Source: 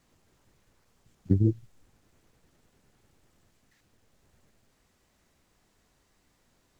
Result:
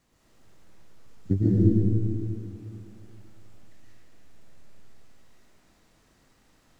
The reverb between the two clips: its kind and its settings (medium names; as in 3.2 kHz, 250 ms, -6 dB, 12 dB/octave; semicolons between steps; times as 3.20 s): algorithmic reverb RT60 2.6 s, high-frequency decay 0.75×, pre-delay 90 ms, DRR -7.5 dB; trim -1.5 dB